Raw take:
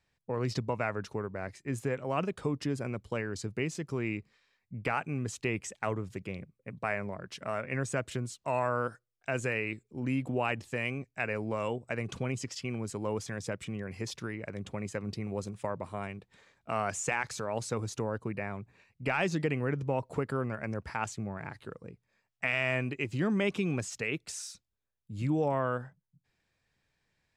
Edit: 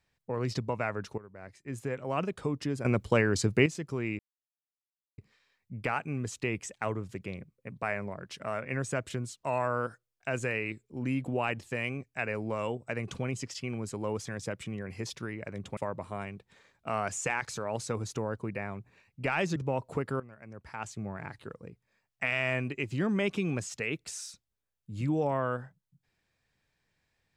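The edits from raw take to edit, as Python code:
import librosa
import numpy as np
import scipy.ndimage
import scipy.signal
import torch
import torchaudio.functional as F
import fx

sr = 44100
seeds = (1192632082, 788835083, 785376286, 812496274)

y = fx.edit(x, sr, fx.fade_in_from(start_s=1.18, length_s=0.96, floor_db=-16.5),
    fx.clip_gain(start_s=2.85, length_s=0.81, db=9.5),
    fx.insert_silence(at_s=4.19, length_s=0.99),
    fx.cut(start_s=14.78, length_s=0.81),
    fx.cut(start_s=19.38, length_s=0.39),
    fx.fade_in_from(start_s=20.41, length_s=0.87, curve='qua', floor_db=-16.0), tone=tone)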